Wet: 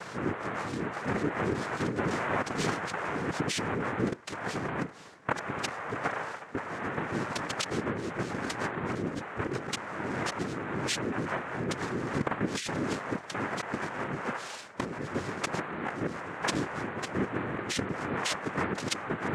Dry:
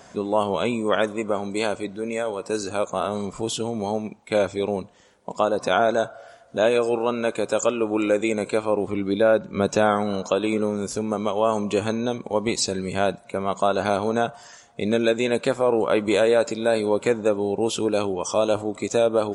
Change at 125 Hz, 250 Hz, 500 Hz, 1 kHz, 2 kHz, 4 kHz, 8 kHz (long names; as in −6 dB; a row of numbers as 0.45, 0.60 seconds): −2.0, −8.0, −15.0, −7.0, −2.5, −5.5, −6.5 decibels